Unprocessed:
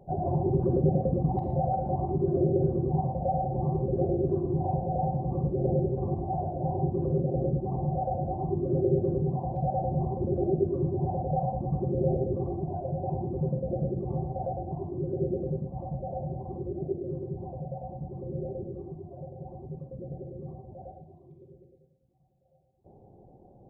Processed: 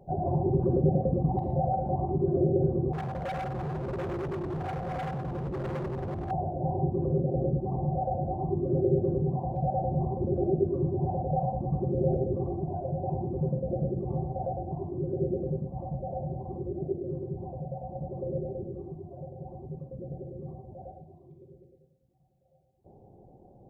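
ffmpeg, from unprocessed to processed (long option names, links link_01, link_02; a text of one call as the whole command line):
ffmpeg -i in.wav -filter_complex "[0:a]asettb=1/sr,asplit=3[link_01][link_02][link_03];[link_01]atrim=end=2.934[link_04];[link_02]atrim=start=2.93:end=6.31,asetpts=PTS-STARTPTS,afade=type=in:duration=0.004:curve=qsin,afade=type=out:start_time=3.376:duration=0.004:curve=qsin,asoftclip=type=hard:threshold=-31dB[link_05];[link_03]atrim=start=6.306[link_06];[link_04][link_05]acrossfade=duration=0.004:curve1=hsin:curve2=qsin[link_07];[link_07][link_06]acrossfade=duration=0.004:curve1=qsin:curve2=hsin,asettb=1/sr,asplit=3[link_08][link_09][link_10];[link_08]atrim=end=12.144[link_11];[link_09]atrim=start=12.14:end=12.88,asetpts=PTS-STARTPTS,afade=type=in:duration=0.004:curve=qsin,afade=type=out:start_time=0.736:duration=0.004:curve=qsin,acompressor=mode=upward:threshold=-32dB:ratio=2.5:attack=3.2:release=140:knee=2.83:detection=peak[link_12];[link_10]atrim=start=12.876[link_13];[link_11][link_12]acrossfade=duration=0.004:curve1=hsin:curve2=qsin[link_14];[link_14][link_13]acrossfade=duration=0.004:curve1=qsin:curve2=hsin,asettb=1/sr,asplit=3[link_15][link_16][link_17];[link_15]atrim=end=17.954[link_18];[link_16]atrim=start=17.95:end=18.38,asetpts=PTS-STARTPTS,afade=type=in:duration=0.004:curve=qsin,afade=type=out:start_time=0.426:duration=0.004:curve=qsin,equalizer=frequency=580:width=2.4:gain=10.5[link_19];[link_17]atrim=start=18.376[link_20];[link_18][link_19]acrossfade=duration=0.004:curve1=hsin:curve2=qsin[link_21];[link_21][link_20]acrossfade=duration=0.004:curve1=qsin:curve2=hsin" out.wav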